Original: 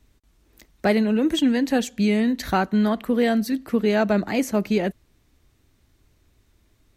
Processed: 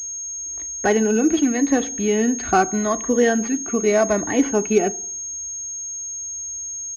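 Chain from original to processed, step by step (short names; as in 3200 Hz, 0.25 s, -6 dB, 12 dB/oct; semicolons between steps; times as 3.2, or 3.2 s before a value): moving spectral ripple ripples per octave 1.1, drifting -0.85 Hz, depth 8 dB; HPF 47 Hz; comb 2.7 ms, depth 47%; FDN reverb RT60 0.57 s, low-frequency decay 1.3×, high-frequency decay 0.35×, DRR 15.5 dB; pulse-width modulation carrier 6500 Hz; gain +1.5 dB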